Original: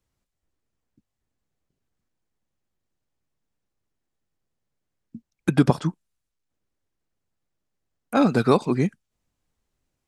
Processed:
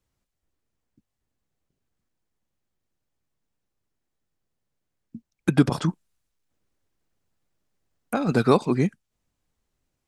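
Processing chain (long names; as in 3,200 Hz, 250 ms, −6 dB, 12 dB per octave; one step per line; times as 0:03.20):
0:05.69–0:08.32: compressor whose output falls as the input rises −23 dBFS, ratio −1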